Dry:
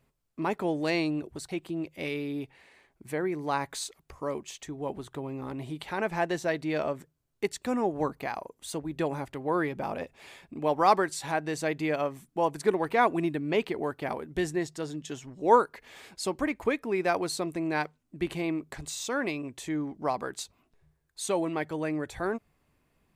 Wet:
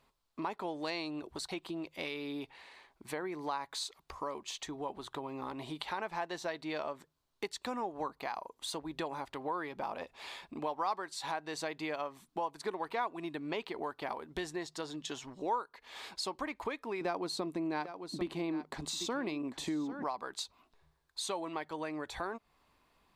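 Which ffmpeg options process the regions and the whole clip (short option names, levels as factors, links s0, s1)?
-filter_complex "[0:a]asettb=1/sr,asplit=3[s0][s1][s2];[s0]atrim=end=17.014[s3];[s1]atrim=start=17.01:end=20.04,asetpts=PTS-STARTPTS,afade=t=in:d=0.004:c=qsin,afade=t=out:st=3.026:d=0.004:c=qsin,equalizer=f=230:w=0.64:g=12.5,aecho=1:1:795:0.178,atrim=end_sample=133623[s4];[s2]atrim=start=20.036[s5];[s3][s4]acrossfade=d=0.004:c1=hsin:c2=qsin[s6];[s6][s5]acrossfade=d=0.004:c1=qsin:c2=hsin,equalizer=f=125:t=o:w=1:g=-7,equalizer=f=1000:t=o:w=1:g=10,equalizer=f=4000:t=o:w=1:g=10,acompressor=threshold=0.0178:ratio=3,volume=0.75"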